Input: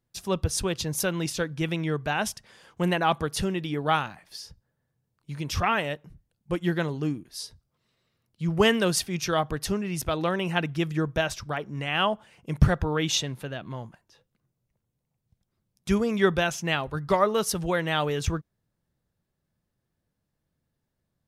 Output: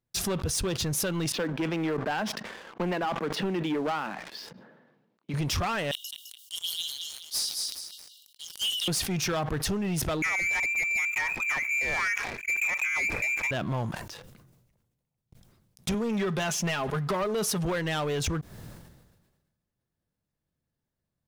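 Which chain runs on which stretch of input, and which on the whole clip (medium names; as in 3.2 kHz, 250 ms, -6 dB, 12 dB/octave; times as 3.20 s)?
1.32–5.34 s: steep high-pass 190 Hz + distance through air 330 m
5.91–8.88 s: brick-wall FIR high-pass 2.8 kHz + treble shelf 4.5 kHz +5 dB + feedback delay 211 ms, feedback 24%, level -8 dB
10.22–13.51 s: overload inside the chain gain 20 dB + bass shelf 220 Hz +9 dB + frequency inversion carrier 2.5 kHz
15.94–17.65 s: high-pass 130 Hz + comb 4.8 ms, depth 56% + compression 2:1, threshold -23 dBFS
whole clip: compression 6:1, threshold -34 dBFS; waveshaping leveller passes 3; decay stretcher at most 44 dB/s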